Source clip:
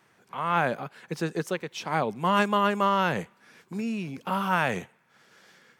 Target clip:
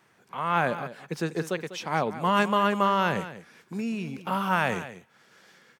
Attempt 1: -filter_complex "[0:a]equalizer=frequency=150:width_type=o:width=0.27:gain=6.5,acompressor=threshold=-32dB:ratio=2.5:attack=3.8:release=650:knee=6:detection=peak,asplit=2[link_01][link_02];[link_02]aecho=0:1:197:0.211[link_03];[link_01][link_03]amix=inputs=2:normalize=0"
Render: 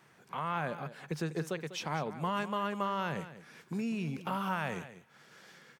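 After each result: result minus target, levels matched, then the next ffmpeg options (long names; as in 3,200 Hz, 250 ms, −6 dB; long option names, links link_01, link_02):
downward compressor: peak gain reduction +13 dB; 125 Hz band +4.0 dB
-filter_complex "[0:a]equalizer=frequency=150:width_type=o:width=0.27:gain=6.5,asplit=2[link_01][link_02];[link_02]aecho=0:1:197:0.211[link_03];[link_01][link_03]amix=inputs=2:normalize=0"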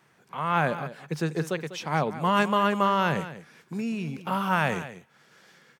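125 Hz band +2.5 dB
-filter_complex "[0:a]asplit=2[link_01][link_02];[link_02]aecho=0:1:197:0.211[link_03];[link_01][link_03]amix=inputs=2:normalize=0"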